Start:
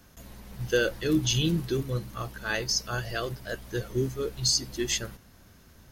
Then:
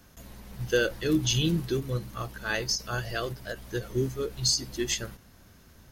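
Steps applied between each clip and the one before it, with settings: ending taper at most 240 dB/s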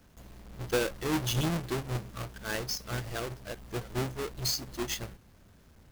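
half-waves squared off; gain -8.5 dB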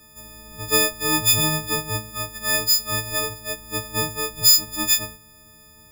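frequency quantiser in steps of 6 st; gain +4 dB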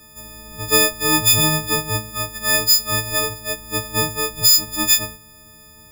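maximiser +5 dB; gain -1 dB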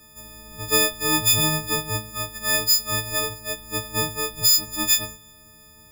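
resonator 270 Hz, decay 0.85 s, mix 40%

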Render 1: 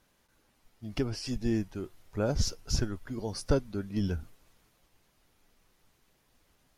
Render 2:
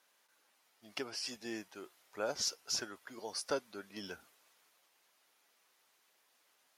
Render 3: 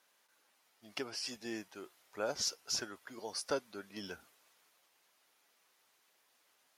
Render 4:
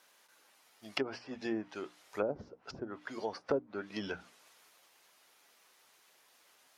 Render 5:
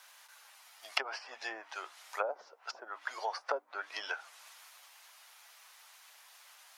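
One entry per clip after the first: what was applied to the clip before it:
Bessel high-pass 770 Hz, order 2
low shelf 160 Hz +3 dB
notches 60/120/180/240/300 Hz; treble ducked by the level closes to 460 Hz, closed at -34.5 dBFS; gain +7 dB
HPF 720 Hz 24 dB/oct; dynamic EQ 3300 Hz, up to -4 dB, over -58 dBFS, Q 0.7; gain +8 dB

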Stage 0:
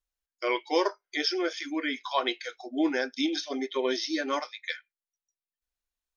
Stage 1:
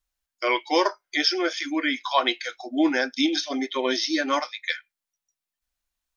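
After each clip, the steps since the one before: bell 430 Hz -12 dB 0.29 oct; gain +6.5 dB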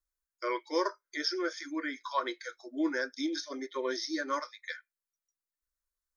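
fixed phaser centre 750 Hz, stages 6; gain -6.5 dB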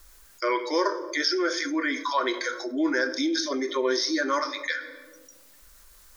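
reverb RT60 0.90 s, pre-delay 5 ms, DRR 12.5 dB; fast leveller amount 50%; gain +4.5 dB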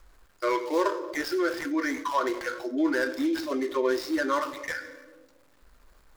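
median filter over 15 samples

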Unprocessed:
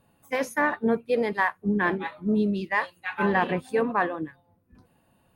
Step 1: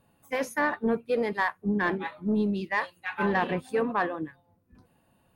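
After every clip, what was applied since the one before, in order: soft clip -14 dBFS, distortion -22 dB; gain -1.5 dB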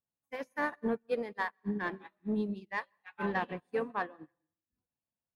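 plate-style reverb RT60 0.7 s, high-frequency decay 0.95×, pre-delay 0.115 s, DRR 16 dB; upward expander 2.5:1, over -42 dBFS; gain -4 dB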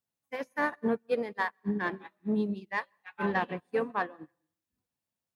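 HPF 60 Hz; gain +3.5 dB

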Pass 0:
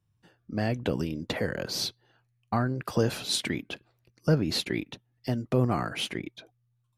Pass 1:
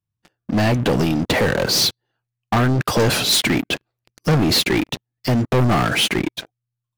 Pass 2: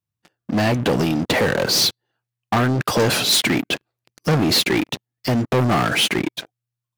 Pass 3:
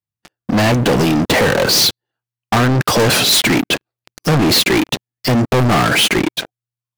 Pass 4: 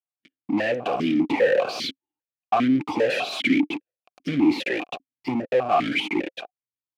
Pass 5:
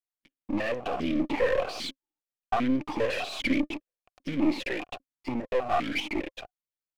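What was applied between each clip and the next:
sample leveller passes 5
low shelf 67 Hz -12 dB
sample leveller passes 3
vowel sequencer 5 Hz; gain +1.5 dB
half-wave gain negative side -7 dB; gain -3.5 dB

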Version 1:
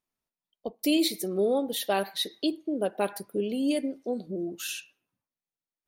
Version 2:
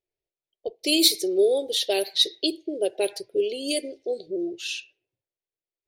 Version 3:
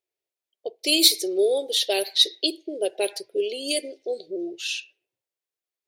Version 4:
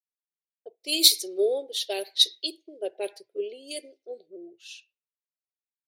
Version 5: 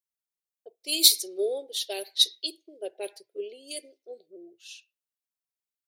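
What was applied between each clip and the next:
low-pass opened by the level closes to 1600 Hz, open at -21.5 dBFS; EQ curve 130 Hz 0 dB, 220 Hz -20 dB, 370 Hz +8 dB, 640 Hz +1 dB, 1200 Hz -18 dB, 2100 Hz +3 dB, 4900 Hz +14 dB, 7300 Hz +12 dB
HPF 480 Hz 6 dB/oct; gain +2.5 dB
three-band expander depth 100%; gain -8.5 dB
high shelf 4900 Hz +7 dB; gain -4 dB

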